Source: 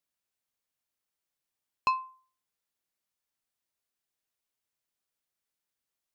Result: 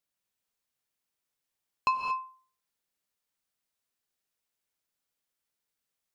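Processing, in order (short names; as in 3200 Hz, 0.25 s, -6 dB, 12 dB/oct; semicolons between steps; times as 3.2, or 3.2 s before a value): non-linear reverb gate 0.25 s rising, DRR 3.5 dB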